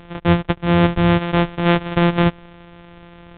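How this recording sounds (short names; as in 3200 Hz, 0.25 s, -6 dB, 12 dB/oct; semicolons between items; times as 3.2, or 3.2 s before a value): a buzz of ramps at a fixed pitch in blocks of 256 samples; µ-law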